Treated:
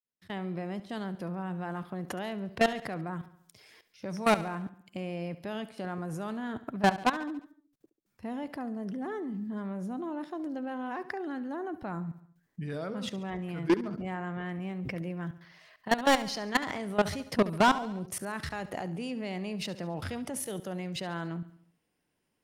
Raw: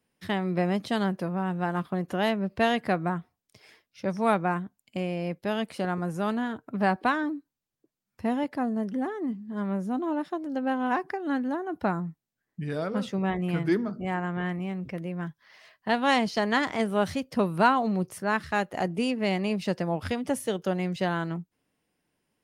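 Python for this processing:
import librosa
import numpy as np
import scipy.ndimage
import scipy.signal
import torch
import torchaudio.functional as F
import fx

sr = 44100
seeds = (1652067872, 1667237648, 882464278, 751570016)

y = fx.fade_in_head(x, sr, length_s=2.06)
y = fx.high_shelf(y, sr, hz=3500.0, db=5.5, at=(3.13, 4.41))
y = fx.level_steps(y, sr, step_db=22)
y = 10.0 ** (-26.0 / 20.0) * np.tanh(y / 10.0 ** (-26.0 / 20.0))
y = fx.echo_feedback(y, sr, ms=70, feedback_pct=53, wet_db=-16)
y = F.gain(torch.from_numpy(y), 8.5).numpy()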